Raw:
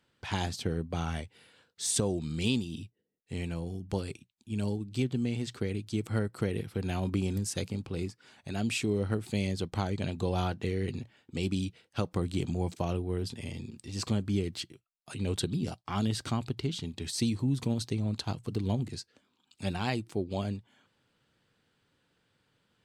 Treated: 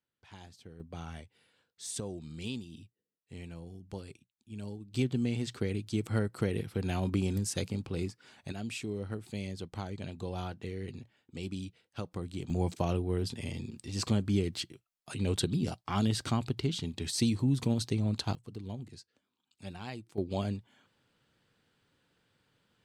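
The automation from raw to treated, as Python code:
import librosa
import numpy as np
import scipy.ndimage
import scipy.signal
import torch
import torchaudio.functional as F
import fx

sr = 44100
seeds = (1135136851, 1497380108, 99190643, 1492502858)

y = fx.gain(x, sr, db=fx.steps((0.0, -19.0), (0.8, -9.5), (4.94, 0.0), (8.52, -7.5), (12.5, 1.0), (18.35, -10.5), (20.18, 0.0)))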